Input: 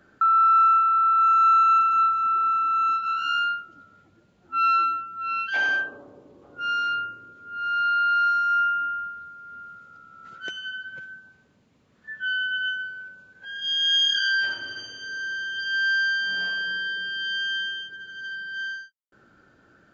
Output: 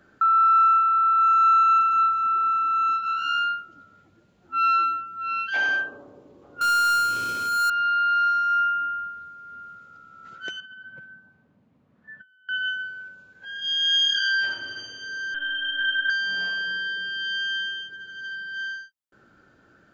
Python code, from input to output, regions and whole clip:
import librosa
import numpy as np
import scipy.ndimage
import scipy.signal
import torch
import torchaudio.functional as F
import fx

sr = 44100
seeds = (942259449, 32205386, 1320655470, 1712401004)

y = fx.chain(x, sr, fx.lowpass(hz=2900.0, slope=24),
    fx.peak_eq(hz=980.0, db=7.0, octaves=0.71),
    fx.power_curve(exponent=0.35), at=(6.61, 7.7))
y = fx.chain(y, sr, fx.bandpass_q(hz=300.0, q=0.54),
    fx.peak_eq(hz=390.0, db=-8.0, octaves=0.95),
    fx.over_compress(threshold_db=-45.0, ratio=-0.5), at=(10.6, 12.49))
y = fx.chain(y, sr, fx.peak_eq(hz=2800.0, db=5.0, octaves=2.3),
    fx.lpc_monotone(seeds[0], pitch_hz=290.0, order=10), at=(15.34, 16.1))